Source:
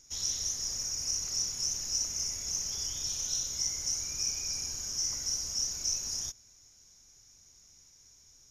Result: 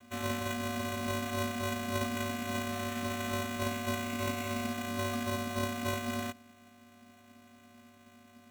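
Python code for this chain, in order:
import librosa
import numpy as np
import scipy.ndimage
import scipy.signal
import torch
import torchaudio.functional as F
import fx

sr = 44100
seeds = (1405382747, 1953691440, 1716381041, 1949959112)

y = fx.peak_eq(x, sr, hz=620.0, db=11.5, octaves=2.6)
y = fx.vocoder(y, sr, bands=16, carrier='square', carrier_hz=238.0)
y = fx.sample_hold(y, sr, seeds[0], rate_hz=4900.0, jitter_pct=0)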